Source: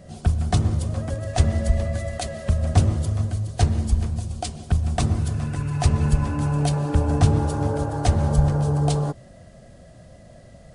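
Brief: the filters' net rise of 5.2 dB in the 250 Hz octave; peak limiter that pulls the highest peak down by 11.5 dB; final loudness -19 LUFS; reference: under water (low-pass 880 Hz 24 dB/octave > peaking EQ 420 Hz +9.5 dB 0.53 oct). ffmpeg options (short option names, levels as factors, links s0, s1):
-af "equalizer=f=250:t=o:g=6,alimiter=limit=0.178:level=0:latency=1,lowpass=f=880:w=0.5412,lowpass=f=880:w=1.3066,equalizer=f=420:t=o:w=0.53:g=9.5,volume=1.68"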